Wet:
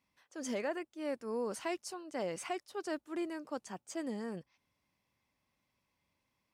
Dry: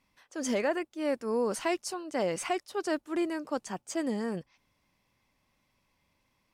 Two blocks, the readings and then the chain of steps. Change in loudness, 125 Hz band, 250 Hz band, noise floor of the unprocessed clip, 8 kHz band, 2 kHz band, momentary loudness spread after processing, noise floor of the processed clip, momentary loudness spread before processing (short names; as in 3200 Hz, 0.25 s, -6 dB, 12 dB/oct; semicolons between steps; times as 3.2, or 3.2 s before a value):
-7.5 dB, -7.5 dB, -7.5 dB, -75 dBFS, -7.5 dB, -7.5 dB, 6 LU, -83 dBFS, 6 LU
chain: HPF 51 Hz; gain -7.5 dB